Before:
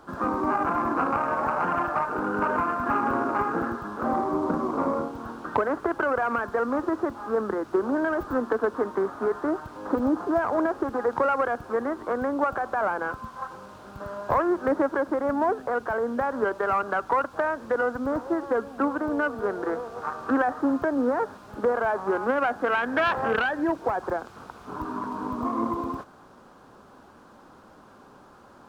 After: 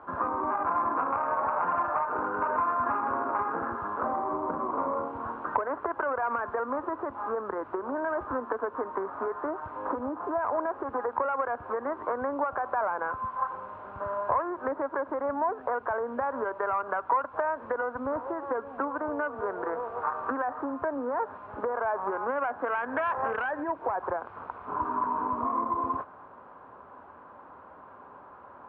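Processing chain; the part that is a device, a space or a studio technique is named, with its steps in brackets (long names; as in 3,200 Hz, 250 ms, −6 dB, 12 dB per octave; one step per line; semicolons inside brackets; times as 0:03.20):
bass amplifier (downward compressor, threshold −28 dBFS, peak gain reduction 10 dB; loudspeaker in its box 69–2,300 Hz, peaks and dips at 140 Hz −8 dB, 210 Hz −9 dB, 330 Hz −5 dB, 610 Hz +3 dB, 1,000 Hz +8 dB)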